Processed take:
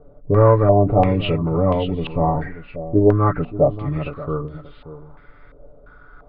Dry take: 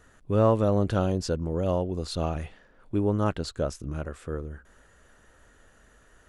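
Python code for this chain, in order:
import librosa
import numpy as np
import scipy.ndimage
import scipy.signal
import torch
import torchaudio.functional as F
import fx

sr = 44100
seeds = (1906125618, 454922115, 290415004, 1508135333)

p1 = fx.freq_compress(x, sr, knee_hz=1000.0, ratio=1.5)
p2 = fx.low_shelf(p1, sr, hz=110.0, db=5.5)
p3 = fx.hum_notches(p2, sr, base_hz=60, count=5)
p4 = np.clip(p3, -10.0 ** (-21.0 / 20.0), 10.0 ** (-21.0 / 20.0))
p5 = p3 + (p4 * 10.0 ** (-10.0 / 20.0))
p6 = fx.low_shelf(p5, sr, hz=440.0, db=4.5)
p7 = p6 + 0.78 * np.pad(p6, (int(6.9 * sr / 1000.0), 0))[:len(p6)]
p8 = p7 + fx.echo_single(p7, sr, ms=581, db=-13.5, dry=0)
y = fx.filter_held_lowpass(p8, sr, hz=2.9, low_hz=580.0, high_hz=3100.0)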